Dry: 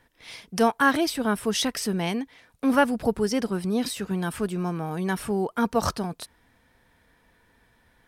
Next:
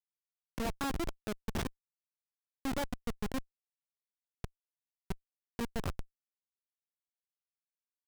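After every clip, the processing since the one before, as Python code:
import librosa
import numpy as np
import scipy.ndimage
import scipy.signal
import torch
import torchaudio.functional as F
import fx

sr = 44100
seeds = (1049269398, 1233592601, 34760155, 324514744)

y = fx.schmitt(x, sr, flips_db=-19.5)
y = y * librosa.db_to_amplitude(-6.0)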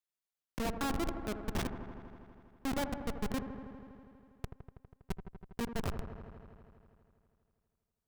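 y = fx.echo_wet_lowpass(x, sr, ms=81, feedback_pct=80, hz=1500.0, wet_db=-9.0)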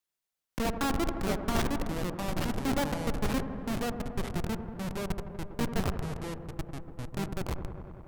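y = fx.echo_pitch(x, sr, ms=522, semitones=-3, count=3, db_per_echo=-3.0)
y = y * librosa.db_to_amplitude(5.0)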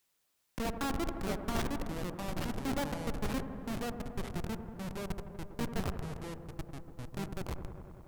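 y = fx.quant_dither(x, sr, seeds[0], bits=12, dither='triangular')
y = y * librosa.db_to_amplitude(-5.0)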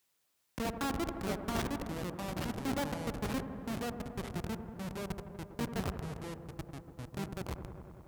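y = scipy.signal.sosfilt(scipy.signal.butter(2, 49.0, 'highpass', fs=sr, output='sos'), x)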